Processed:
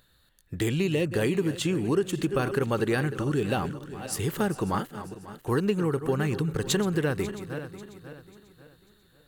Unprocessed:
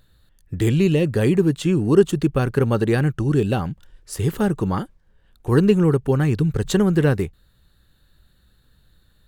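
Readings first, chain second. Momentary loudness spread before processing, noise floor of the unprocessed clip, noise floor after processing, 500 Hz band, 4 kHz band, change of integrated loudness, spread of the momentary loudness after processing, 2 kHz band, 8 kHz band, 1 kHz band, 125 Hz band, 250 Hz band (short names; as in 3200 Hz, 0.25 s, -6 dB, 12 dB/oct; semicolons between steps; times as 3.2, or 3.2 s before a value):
12 LU, -59 dBFS, -63 dBFS, -7.0 dB, -1.0 dB, -8.0 dB, 13 LU, -2.5 dB, 0.0 dB, -3.0 dB, -9.5 dB, -8.5 dB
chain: regenerating reverse delay 0.271 s, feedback 59%, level -13.5 dB; high shelf 3500 Hz -8 dB; compressor 6:1, threshold -17 dBFS, peak gain reduction 9 dB; tilt +2.5 dB/oct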